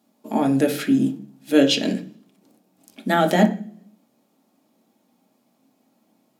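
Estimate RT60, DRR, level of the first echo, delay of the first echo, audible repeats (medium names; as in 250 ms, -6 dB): 0.45 s, 2.0 dB, no echo, no echo, no echo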